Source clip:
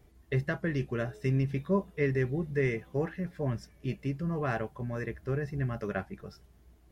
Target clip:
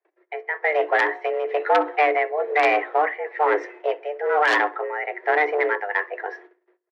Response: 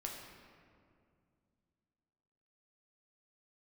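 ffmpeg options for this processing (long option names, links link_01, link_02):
-filter_complex "[0:a]aemphasis=mode=reproduction:type=50fm,agate=range=-32dB:threshold=-56dB:ratio=16:detection=peak,equalizer=frequency=1500:width_type=o:width=0.6:gain=14.5,dynaudnorm=framelen=130:gausssize=11:maxgain=11.5dB,tremolo=f=1.1:d=0.77,aeval=exprs='clip(val(0),-1,0.0668)':channel_layout=same,afreqshift=300,aeval=exprs='(mod(2.82*val(0)+1,2)-1)/2.82':channel_layout=same,highpass=570,lowpass=2200,asplit=2[link_01][link_02];[link_02]adelay=64,lowpass=frequency=1700:poles=1,volume=-20dB,asplit=2[link_03][link_04];[link_04]adelay=64,lowpass=frequency=1700:poles=1,volume=0.45,asplit=2[link_05][link_06];[link_06]adelay=64,lowpass=frequency=1700:poles=1,volume=0.45[link_07];[link_03][link_05][link_07]amix=inputs=3:normalize=0[link_08];[link_01][link_08]amix=inputs=2:normalize=0,alimiter=level_in=17.5dB:limit=-1dB:release=50:level=0:latency=1,volume=-8.5dB"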